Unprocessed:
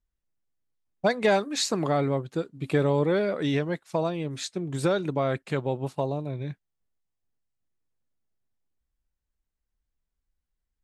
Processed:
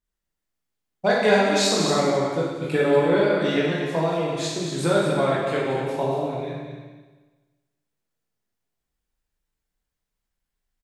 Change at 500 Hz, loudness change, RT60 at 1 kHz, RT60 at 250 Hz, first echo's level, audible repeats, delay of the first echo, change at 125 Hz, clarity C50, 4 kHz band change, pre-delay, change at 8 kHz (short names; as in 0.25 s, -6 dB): +5.5 dB, +5.0 dB, 1.3 s, 1.3 s, -7.5 dB, 1, 0.232 s, +1.0 dB, -1.5 dB, +7.0 dB, 15 ms, +6.0 dB